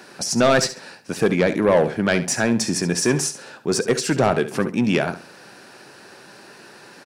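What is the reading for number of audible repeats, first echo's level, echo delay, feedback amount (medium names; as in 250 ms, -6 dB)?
2, -13.0 dB, 69 ms, 23%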